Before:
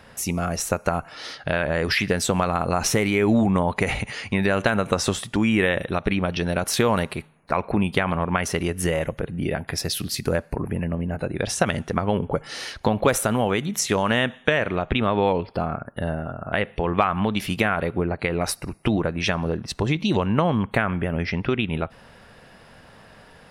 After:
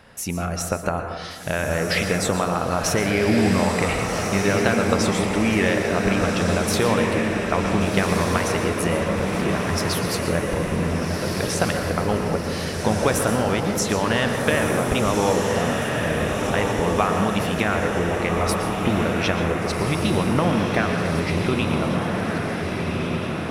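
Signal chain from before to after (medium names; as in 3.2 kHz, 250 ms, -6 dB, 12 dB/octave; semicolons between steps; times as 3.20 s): on a send: echo that smears into a reverb 1532 ms, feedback 60%, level -3 dB; on the sum: plate-style reverb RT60 1.3 s, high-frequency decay 0.3×, pre-delay 105 ms, DRR 5.5 dB; trim -1.5 dB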